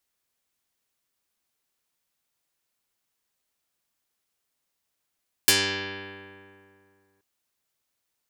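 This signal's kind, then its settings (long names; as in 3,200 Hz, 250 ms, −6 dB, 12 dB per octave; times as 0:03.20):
Karplus-Strong string G2, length 1.73 s, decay 2.46 s, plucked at 0.15, dark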